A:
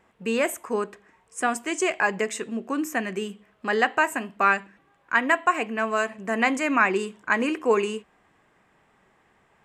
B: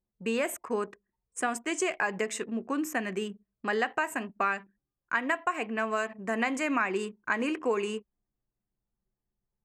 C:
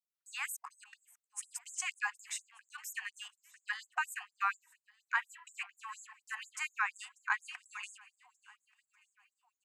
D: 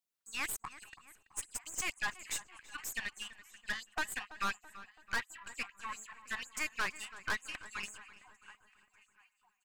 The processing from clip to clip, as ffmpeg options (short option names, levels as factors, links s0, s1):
-af "anlmdn=0.158,acompressor=threshold=0.0708:ratio=3,volume=0.75"
-af "aecho=1:1:591|1182|1773|2364:0.0794|0.0453|0.0258|0.0147,afftfilt=real='re*gte(b*sr/1024,690*pow(6700/690,0.5+0.5*sin(2*PI*4.2*pts/sr)))':imag='im*gte(b*sr/1024,690*pow(6700/690,0.5+0.5*sin(2*PI*4.2*pts/sr)))':win_size=1024:overlap=0.75,volume=0.708"
-filter_complex "[0:a]aeval=exprs='(tanh(70.8*val(0)+0.65)-tanh(0.65))/70.8':c=same,asplit=2[s0][s1];[s1]adelay=332,lowpass=f=3000:p=1,volume=0.168,asplit=2[s2][s3];[s3]adelay=332,lowpass=f=3000:p=1,volume=0.55,asplit=2[s4][s5];[s5]adelay=332,lowpass=f=3000:p=1,volume=0.55,asplit=2[s6][s7];[s7]adelay=332,lowpass=f=3000:p=1,volume=0.55,asplit=2[s8][s9];[s9]adelay=332,lowpass=f=3000:p=1,volume=0.55[s10];[s0][s2][s4][s6][s8][s10]amix=inputs=6:normalize=0,volume=2.11"